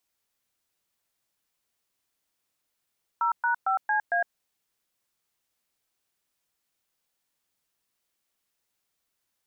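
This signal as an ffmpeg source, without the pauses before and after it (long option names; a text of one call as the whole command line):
ffmpeg -f lavfi -i "aevalsrc='0.0596*clip(min(mod(t,0.227),0.109-mod(t,0.227))/0.002,0,1)*(eq(floor(t/0.227),0)*(sin(2*PI*941*mod(t,0.227))+sin(2*PI*1336*mod(t,0.227)))+eq(floor(t/0.227),1)*(sin(2*PI*941*mod(t,0.227))+sin(2*PI*1477*mod(t,0.227)))+eq(floor(t/0.227),2)*(sin(2*PI*770*mod(t,0.227))+sin(2*PI*1336*mod(t,0.227)))+eq(floor(t/0.227),3)*(sin(2*PI*852*mod(t,0.227))+sin(2*PI*1633*mod(t,0.227)))+eq(floor(t/0.227),4)*(sin(2*PI*697*mod(t,0.227))+sin(2*PI*1633*mod(t,0.227))))':duration=1.135:sample_rate=44100" out.wav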